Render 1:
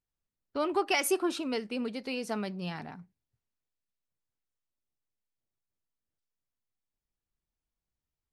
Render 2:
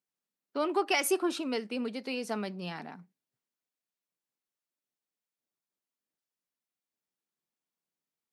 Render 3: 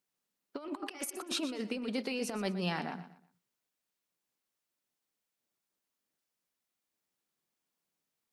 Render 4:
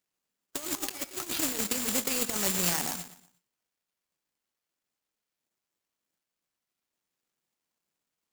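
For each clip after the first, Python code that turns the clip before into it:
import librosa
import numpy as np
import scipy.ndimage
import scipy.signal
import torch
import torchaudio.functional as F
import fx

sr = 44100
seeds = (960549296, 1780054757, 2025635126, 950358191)

y1 = scipy.signal.sosfilt(scipy.signal.butter(4, 180.0, 'highpass', fs=sr, output='sos'), x)
y2 = fx.over_compress(y1, sr, threshold_db=-36.0, ratio=-0.5)
y2 = fx.echo_feedback(y2, sr, ms=120, feedback_pct=31, wet_db=-13.0)
y3 = (np.kron(scipy.signal.resample_poly(y2, 1, 6), np.eye(6)[0]) * 6)[:len(y2)]
y3 = fx.clock_jitter(y3, sr, seeds[0], jitter_ms=0.022)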